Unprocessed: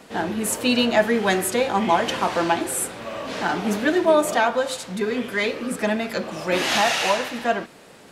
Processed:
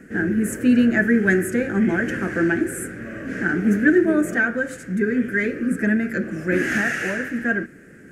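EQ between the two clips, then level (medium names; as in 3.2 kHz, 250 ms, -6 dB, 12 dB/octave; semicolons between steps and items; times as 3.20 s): FFT filter 340 Hz 0 dB, 990 Hz -29 dB, 1.6 kHz +2 dB, 3.8 kHz -30 dB, 6.6 kHz -14 dB; +6.5 dB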